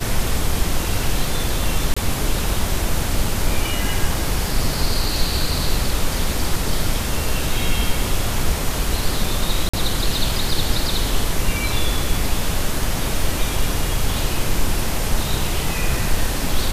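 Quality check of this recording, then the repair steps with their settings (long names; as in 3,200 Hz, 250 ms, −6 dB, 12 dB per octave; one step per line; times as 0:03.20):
0:01.94–0:01.97: drop-out 25 ms
0:09.69–0:09.73: drop-out 45 ms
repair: repair the gap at 0:01.94, 25 ms
repair the gap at 0:09.69, 45 ms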